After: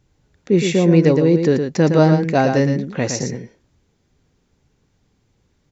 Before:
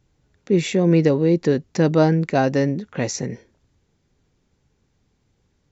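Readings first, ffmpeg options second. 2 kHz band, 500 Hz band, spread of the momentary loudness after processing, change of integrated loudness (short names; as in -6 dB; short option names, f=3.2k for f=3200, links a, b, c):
+3.5 dB, +3.0 dB, 9 LU, +3.5 dB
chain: -af "aecho=1:1:114:0.473,volume=2.5dB"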